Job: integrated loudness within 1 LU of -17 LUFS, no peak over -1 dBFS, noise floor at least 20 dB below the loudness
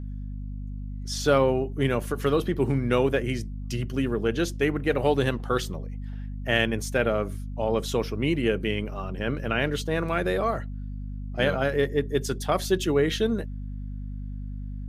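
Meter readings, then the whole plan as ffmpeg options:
hum 50 Hz; harmonics up to 250 Hz; hum level -31 dBFS; loudness -26.0 LUFS; peak -8.5 dBFS; loudness target -17.0 LUFS
-> -af "bandreject=f=50:t=h:w=4,bandreject=f=100:t=h:w=4,bandreject=f=150:t=h:w=4,bandreject=f=200:t=h:w=4,bandreject=f=250:t=h:w=4"
-af "volume=9dB,alimiter=limit=-1dB:level=0:latency=1"

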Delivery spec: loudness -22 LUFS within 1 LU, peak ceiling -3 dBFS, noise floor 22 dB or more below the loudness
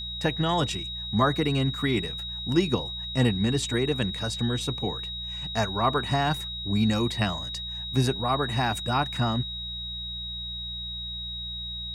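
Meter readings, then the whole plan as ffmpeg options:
hum 60 Hz; harmonics up to 180 Hz; hum level -39 dBFS; steady tone 3800 Hz; tone level -33 dBFS; loudness -27.0 LUFS; peak -9.5 dBFS; loudness target -22.0 LUFS
-> -af "bandreject=f=60:t=h:w=4,bandreject=f=120:t=h:w=4,bandreject=f=180:t=h:w=4"
-af "bandreject=f=3.8k:w=30"
-af "volume=5dB"

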